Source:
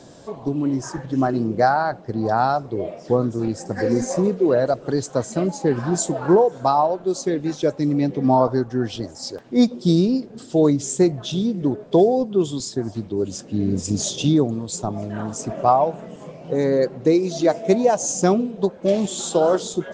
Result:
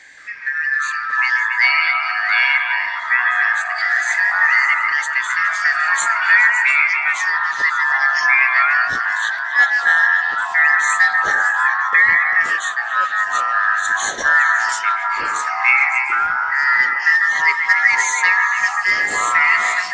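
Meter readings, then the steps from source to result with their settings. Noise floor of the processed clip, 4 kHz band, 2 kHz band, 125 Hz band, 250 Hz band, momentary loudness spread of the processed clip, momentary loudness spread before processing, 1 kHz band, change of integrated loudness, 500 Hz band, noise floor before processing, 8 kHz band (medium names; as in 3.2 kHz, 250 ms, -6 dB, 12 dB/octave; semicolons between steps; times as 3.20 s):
-25 dBFS, +5.0 dB, +26.5 dB, under -25 dB, under -25 dB, 6 LU, 9 LU, +5.0 dB, +6.0 dB, -19.5 dB, -42 dBFS, +1.0 dB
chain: four frequency bands reordered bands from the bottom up 3142; repeats whose band climbs or falls 140 ms, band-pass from 1.5 kHz, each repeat 0.7 oct, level -4 dB; ever faster or slower copies 175 ms, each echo -5 st, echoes 3, each echo -6 dB; trim +1 dB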